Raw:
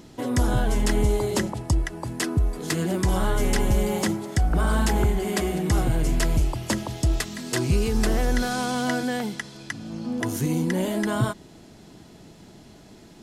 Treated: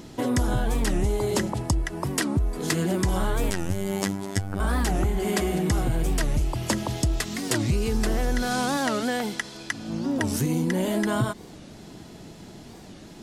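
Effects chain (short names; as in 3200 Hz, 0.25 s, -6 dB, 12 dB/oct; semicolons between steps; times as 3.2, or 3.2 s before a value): 8.78–9.88 bell 140 Hz -8 dB 1.4 oct; compressor 3:1, threshold -26 dBFS, peak gain reduction 7.5 dB; 3.52–4.6 robotiser 98 Hz; record warp 45 rpm, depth 250 cents; gain +4 dB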